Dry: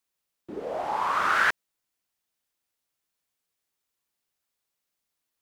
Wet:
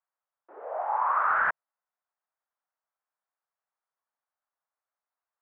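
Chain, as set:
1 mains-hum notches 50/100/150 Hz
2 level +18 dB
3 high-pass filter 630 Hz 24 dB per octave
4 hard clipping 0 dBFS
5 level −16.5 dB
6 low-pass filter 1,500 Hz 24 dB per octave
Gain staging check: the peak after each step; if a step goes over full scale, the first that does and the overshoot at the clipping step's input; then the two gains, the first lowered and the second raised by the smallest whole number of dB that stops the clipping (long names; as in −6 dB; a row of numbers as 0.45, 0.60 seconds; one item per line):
−10.0, +8.0, +7.0, 0.0, −16.5, −16.5 dBFS
step 2, 7.0 dB
step 2 +11 dB, step 5 −9.5 dB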